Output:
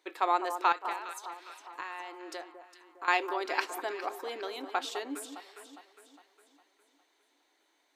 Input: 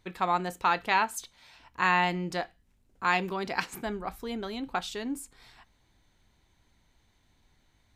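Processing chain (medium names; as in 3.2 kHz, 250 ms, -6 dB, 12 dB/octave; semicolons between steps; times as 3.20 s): elliptic high-pass 300 Hz, stop band 40 dB; 0.72–3.08 s: compression 8:1, threshold -38 dBFS, peak gain reduction 17.5 dB; echo whose repeats swap between lows and highs 204 ms, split 1.3 kHz, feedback 68%, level -9 dB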